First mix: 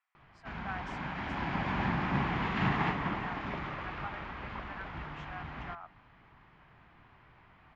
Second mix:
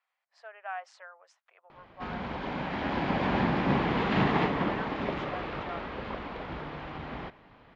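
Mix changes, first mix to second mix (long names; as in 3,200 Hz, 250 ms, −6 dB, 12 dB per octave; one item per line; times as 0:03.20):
background: entry +1.55 s
master: add octave-band graphic EQ 250/500/4,000 Hz +5/+12/+7 dB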